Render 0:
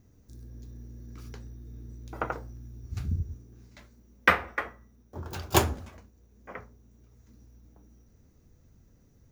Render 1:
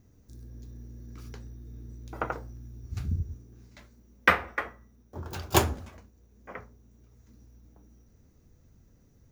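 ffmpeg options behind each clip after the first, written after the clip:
-af anull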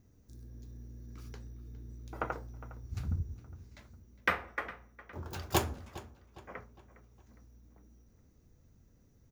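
-filter_complex "[0:a]alimiter=limit=-10dB:level=0:latency=1:release=479,asplit=2[a][b];[b]adelay=409,lowpass=f=4.8k:p=1,volume=-17dB,asplit=2[c][d];[d]adelay=409,lowpass=f=4.8k:p=1,volume=0.45,asplit=2[e][f];[f]adelay=409,lowpass=f=4.8k:p=1,volume=0.45,asplit=2[g][h];[h]adelay=409,lowpass=f=4.8k:p=1,volume=0.45[i];[a][c][e][g][i]amix=inputs=5:normalize=0,volume=-4dB"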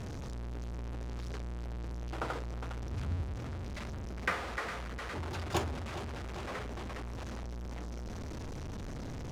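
-af "aeval=exprs='val(0)+0.5*0.0335*sgn(val(0))':c=same,adynamicsmooth=sensitivity=3.5:basefreq=4.8k,volume=-5dB"

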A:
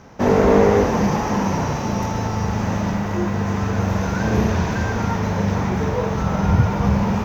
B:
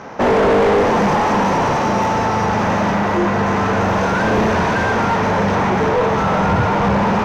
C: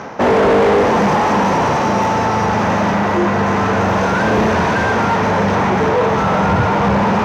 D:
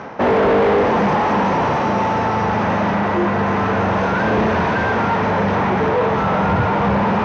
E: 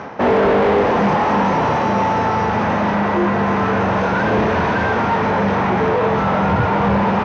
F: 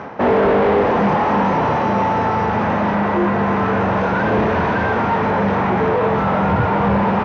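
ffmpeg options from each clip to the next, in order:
-filter_complex "[0:a]asplit=2[a][b];[b]highpass=f=720:p=1,volume=28dB,asoftclip=type=tanh:threshold=-2dB[c];[a][c]amix=inputs=2:normalize=0,lowpass=f=1.4k:p=1,volume=-6dB,volume=-4dB"
-af "highpass=55,areverse,acompressor=mode=upward:threshold=-17dB:ratio=2.5,areverse,volume=1.5dB"
-af "lowpass=3.9k,volume=-2.5dB"
-filter_complex "[0:a]areverse,acompressor=mode=upward:threshold=-23dB:ratio=2.5,areverse,asplit=2[a][b];[b]adelay=25,volume=-11dB[c];[a][c]amix=inputs=2:normalize=0"
-af "aemphasis=mode=reproduction:type=50kf"

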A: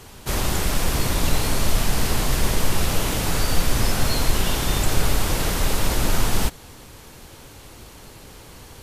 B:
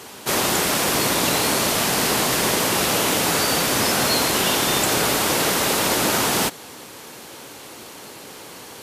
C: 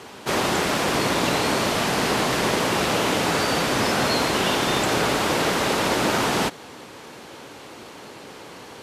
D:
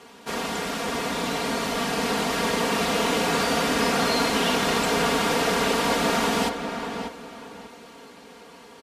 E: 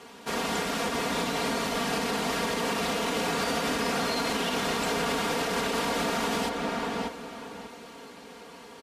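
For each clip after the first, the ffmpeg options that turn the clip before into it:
-af "highpass=240,volume=6.5dB"
-af "aemphasis=mode=reproduction:type=50fm"
-filter_complex "[0:a]dynaudnorm=f=250:g=17:m=6dB,aecho=1:1:4.3:0.75,asplit=2[a][b];[b]adelay=592,lowpass=f=2.8k:p=1,volume=-7dB,asplit=2[c][d];[d]adelay=592,lowpass=f=2.8k:p=1,volume=0.27,asplit=2[e][f];[f]adelay=592,lowpass=f=2.8k:p=1,volume=0.27[g];[c][e][g]amix=inputs=3:normalize=0[h];[a][h]amix=inputs=2:normalize=0,volume=-8.5dB"
-af "alimiter=limit=-19dB:level=0:latency=1:release=111"

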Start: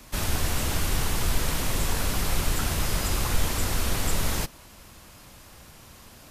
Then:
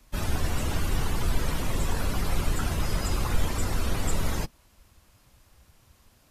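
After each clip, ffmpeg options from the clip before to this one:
-af "afftdn=nr=13:nf=-34"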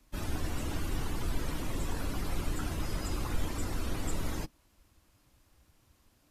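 -af "equalizer=f=300:t=o:w=0.4:g=7.5,volume=-7.5dB"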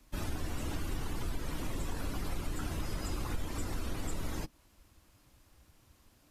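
-af "acompressor=threshold=-36dB:ratio=2.5,volume=2.5dB"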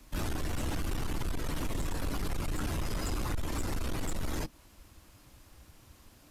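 -af "asoftclip=type=tanh:threshold=-34.5dB,volume=7dB"

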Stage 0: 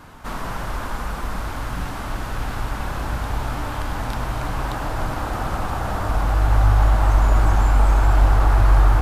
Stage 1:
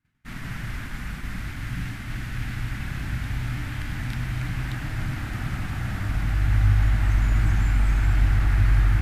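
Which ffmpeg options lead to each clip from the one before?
-af "equalizer=f=125:t=o:w=1:g=10,equalizer=f=250:t=o:w=1:g=4,equalizer=f=500:t=o:w=1:g=-11,equalizer=f=1k:t=o:w=1:g=-11,equalizer=f=2k:t=o:w=1:g=11,agate=range=-33dB:threshold=-24dB:ratio=3:detection=peak,volume=-6.5dB"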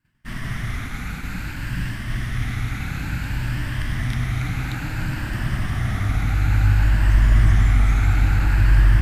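-af "afftfilt=real='re*pow(10,6/40*sin(2*PI*(1.3*log(max(b,1)*sr/1024/100)/log(2)-(0.57)*(pts-256)/sr)))':imag='im*pow(10,6/40*sin(2*PI*(1.3*log(max(b,1)*sr/1024/100)/log(2)-(0.57)*(pts-256)/sr)))':win_size=1024:overlap=0.75,volume=4dB"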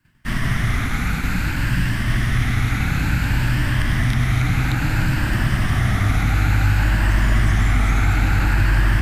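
-filter_complex "[0:a]acrossover=split=150|1800[a][b][c];[a]acompressor=threshold=-26dB:ratio=4[d];[b]acompressor=threshold=-32dB:ratio=4[e];[c]acompressor=threshold=-39dB:ratio=4[f];[d][e][f]amix=inputs=3:normalize=0,volume=9dB"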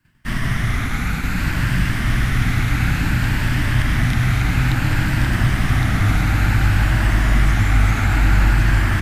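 -af "aecho=1:1:1113:0.631"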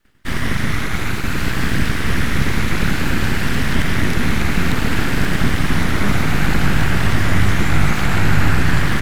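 -af "aeval=exprs='abs(val(0))':c=same,volume=3dB"

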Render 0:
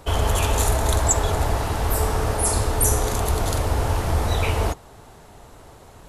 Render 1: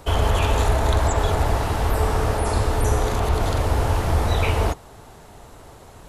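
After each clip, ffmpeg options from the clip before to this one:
-filter_complex "[0:a]acrossover=split=4400[a][b];[b]acompressor=threshold=-40dB:ratio=4:attack=1:release=60[c];[a][c]amix=inputs=2:normalize=0,volume=1.5dB"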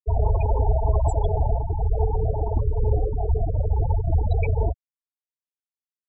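-af "bandreject=f=99.92:t=h:w=4,bandreject=f=199.84:t=h:w=4,bandreject=f=299.76:t=h:w=4,bandreject=f=399.68:t=h:w=4,bandreject=f=499.6:t=h:w=4,bandreject=f=599.52:t=h:w=4,bandreject=f=699.44:t=h:w=4,bandreject=f=799.36:t=h:w=4,bandreject=f=899.28:t=h:w=4,bandreject=f=999.2:t=h:w=4,bandreject=f=1.09912k:t=h:w=4,bandreject=f=1.19904k:t=h:w=4,bandreject=f=1.29896k:t=h:w=4,bandreject=f=1.39888k:t=h:w=4,bandreject=f=1.4988k:t=h:w=4,bandreject=f=1.59872k:t=h:w=4,bandreject=f=1.69864k:t=h:w=4,bandreject=f=1.79856k:t=h:w=4,bandreject=f=1.89848k:t=h:w=4,bandreject=f=1.9984k:t=h:w=4,afftfilt=real='re*gte(hypot(re,im),0.251)':imag='im*gte(hypot(re,im),0.251)':win_size=1024:overlap=0.75"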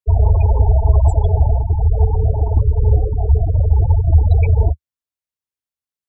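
-af "equalizer=f=79:t=o:w=1.3:g=9.5,volume=1.5dB"

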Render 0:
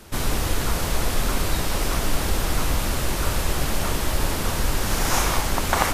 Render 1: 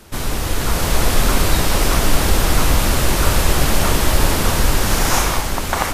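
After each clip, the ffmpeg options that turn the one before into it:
-af "dynaudnorm=f=130:g=11:m=8dB,volume=1.5dB"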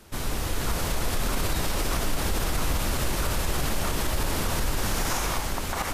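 -af "alimiter=limit=-9dB:level=0:latency=1:release=56,volume=-7.5dB"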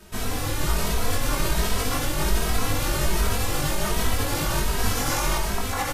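-filter_complex "[0:a]asplit=2[a][b];[b]adelay=20,volume=-3dB[c];[a][c]amix=inputs=2:normalize=0,asplit=2[d][e];[e]adelay=2.8,afreqshift=1.3[f];[d][f]amix=inputs=2:normalize=1,volume=4dB"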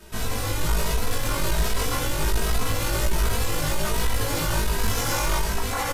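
-filter_complex "[0:a]asoftclip=type=tanh:threshold=-18dB,asplit=2[a][b];[b]adelay=18,volume=-3.5dB[c];[a][c]amix=inputs=2:normalize=0"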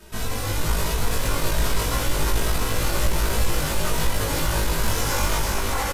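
-af "aecho=1:1:349:0.596"

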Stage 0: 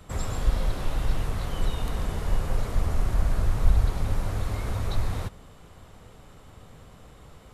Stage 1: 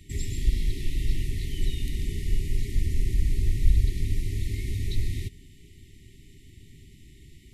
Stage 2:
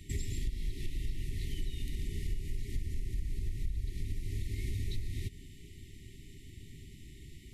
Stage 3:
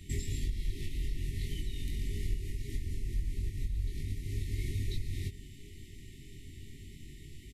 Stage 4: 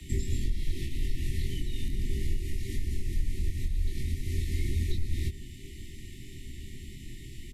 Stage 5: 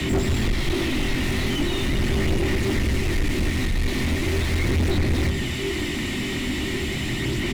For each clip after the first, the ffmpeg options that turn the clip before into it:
-af "afftfilt=real='re*(1-between(b*sr/4096,410,1800))':imag='im*(1-between(b*sr/4096,410,1800))':win_size=4096:overlap=0.75,equalizer=f=190:t=o:w=0.22:g=-6.5"
-af "acompressor=threshold=-31dB:ratio=6"
-filter_complex "[0:a]asplit=2[a][b];[b]adelay=22,volume=-3.5dB[c];[a][c]amix=inputs=2:normalize=0"
-filter_complex "[0:a]afreqshift=-17,acrossover=split=310|1000[a][b][c];[c]alimiter=level_in=18dB:limit=-24dB:level=0:latency=1:release=446,volume=-18dB[d];[a][b][d]amix=inputs=3:normalize=0,volume=6dB"
-filter_complex "[0:a]aphaser=in_gain=1:out_gain=1:delay=4.3:decay=0.35:speed=0.4:type=sinusoidal,asplit=2[a][b];[b]highpass=f=720:p=1,volume=45dB,asoftclip=type=tanh:threshold=-12.5dB[c];[a][c]amix=inputs=2:normalize=0,lowpass=f=1.1k:p=1,volume=-6dB"

